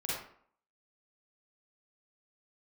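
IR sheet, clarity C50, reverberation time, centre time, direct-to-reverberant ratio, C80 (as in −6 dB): −3.0 dB, 0.60 s, 66 ms, −7.5 dB, 4.0 dB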